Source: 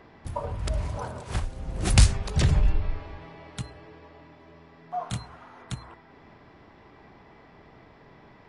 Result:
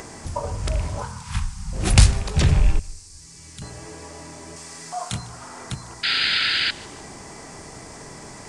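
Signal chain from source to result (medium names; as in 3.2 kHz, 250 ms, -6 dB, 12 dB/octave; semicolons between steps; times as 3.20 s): rattle on loud lows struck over -22 dBFS, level -29 dBFS; 1.02–1.73 s: elliptic band-stop 210–910 Hz; de-hum 59.61 Hz, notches 33; 2.79–3.62 s: amplifier tone stack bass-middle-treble 6-0-2; upward compressor, threshold -36 dBFS; band noise 4.5–9.1 kHz -51 dBFS; 4.56–5.13 s: tilt shelf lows -5.5 dB, about 1.2 kHz; 6.03–6.71 s: painted sound noise 1.3–5 kHz -26 dBFS; thinning echo 151 ms, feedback 40%, level -22 dB; trim +4.5 dB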